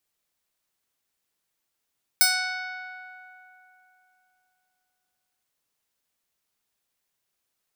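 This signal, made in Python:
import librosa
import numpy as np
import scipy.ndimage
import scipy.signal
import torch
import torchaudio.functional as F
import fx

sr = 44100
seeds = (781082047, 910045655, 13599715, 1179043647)

y = fx.pluck(sr, length_s=3.22, note=78, decay_s=3.25, pick=0.22, brightness='bright')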